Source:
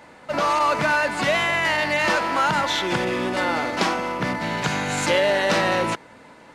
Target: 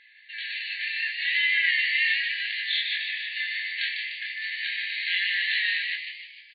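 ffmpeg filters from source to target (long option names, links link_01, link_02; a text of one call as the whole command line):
ffmpeg -i in.wav -filter_complex "[0:a]flanger=delay=19:depth=5.6:speed=0.35,afftfilt=real='re*between(b*sr/4096,1600,4500)':imag='im*between(b*sr/4096,1600,4500)':win_size=4096:overlap=0.75,asplit=7[link_01][link_02][link_03][link_04][link_05][link_06][link_07];[link_02]adelay=150,afreqshift=91,volume=-5.5dB[link_08];[link_03]adelay=300,afreqshift=182,volume=-11.5dB[link_09];[link_04]adelay=450,afreqshift=273,volume=-17.5dB[link_10];[link_05]adelay=600,afreqshift=364,volume=-23.6dB[link_11];[link_06]adelay=750,afreqshift=455,volume=-29.6dB[link_12];[link_07]adelay=900,afreqshift=546,volume=-35.6dB[link_13];[link_01][link_08][link_09][link_10][link_11][link_12][link_13]amix=inputs=7:normalize=0,volume=2dB" out.wav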